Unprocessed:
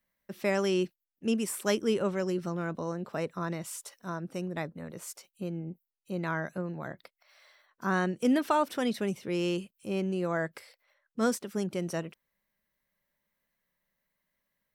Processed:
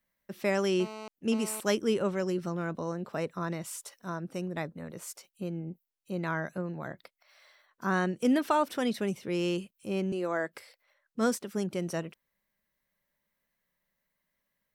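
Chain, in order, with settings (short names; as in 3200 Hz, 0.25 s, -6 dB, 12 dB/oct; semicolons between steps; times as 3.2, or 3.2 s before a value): 0.8–1.6 GSM buzz -42 dBFS; 10.12–10.53 HPF 220 Hz 24 dB/oct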